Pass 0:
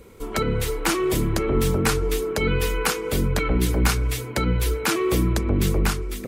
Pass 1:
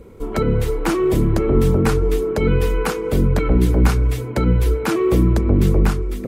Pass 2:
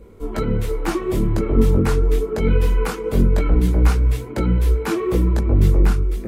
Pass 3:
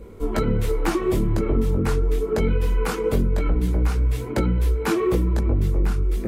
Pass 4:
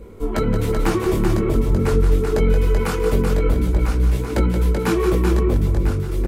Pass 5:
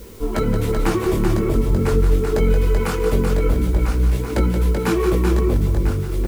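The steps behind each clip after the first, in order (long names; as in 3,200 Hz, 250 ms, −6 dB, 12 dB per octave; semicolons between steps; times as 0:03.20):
tilt shelving filter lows +6.5 dB, about 1,300 Hz
multi-voice chorus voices 6, 1.3 Hz, delay 20 ms, depth 3 ms
downward compressor, threshold −20 dBFS, peak gain reduction 10.5 dB; level +3 dB
multi-tap delay 165/176/383 ms −20/−8/−5 dB; level +1.5 dB
bit-depth reduction 8 bits, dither triangular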